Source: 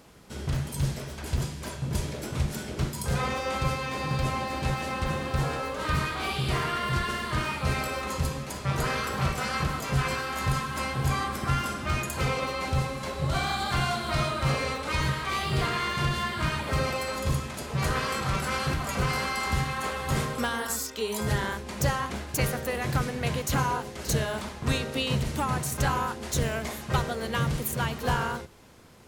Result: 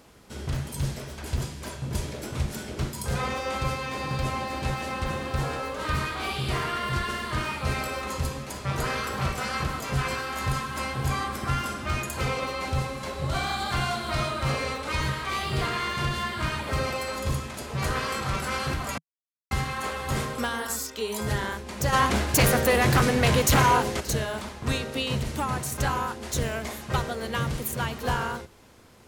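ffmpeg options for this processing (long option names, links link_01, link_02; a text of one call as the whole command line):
ffmpeg -i in.wav -filter_complex "[0:a]asplit=3[link_01][link_02][link_03];[link_01]afade=type=out:start_time=21.92:duration=0.02[link_04];[link_02]aeval=exprs='0.188*sin(PI/2*2.24*val(0)/0.188)':channel_layout=same,afade=type=in:start_time=21.92:duration=0.02,afade=type=out:start_time=23.99:duration=0.02[link_05];[link_03]afade=type=in:start_time=23.99:duration=0.02[link_06];[link_04][link_05][link_06]amix=inputs=3:normalize=0,asplit=3[link_07][link_08][link_09];[link_07]atrim=end=18.98,asetpts=PTS-STARTPTS,afade=type=out:start_time=18.976:duration=0.004:curve=hsin[link_10];[link_08]atrim=start=18.98:end=19.51,asetpts=PTS-STARTPTS,volume=0[link_11];[link_09]atrim=start=19.51,asetpts=PTS-STARTPTS,afade=type=in:duration=0.004:curve=hsin[link_12];[link_10][link_11][link_12]concat=n=3:v=0:a=1,equalizer=frequency=160:width=5.1:gain=-5.5" out.wav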